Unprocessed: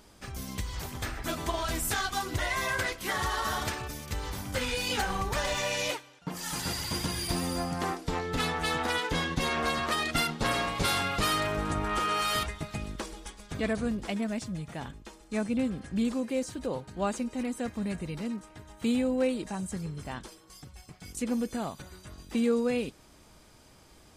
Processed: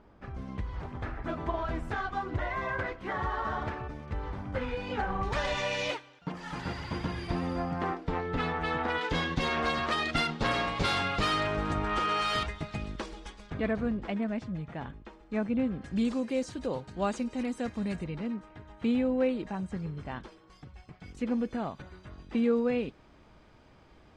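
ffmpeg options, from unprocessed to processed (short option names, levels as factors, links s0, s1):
-af "asetnsamples=n=441:p=0,asendcmd='5.23 lowpass f 3800;6.32 lowpass f 2200;9.01 lowpass f 4500;13.5 lowpass f 2300;15.84 lowpass f 5900;18.04 lowpass f 2700',lowpass=1500"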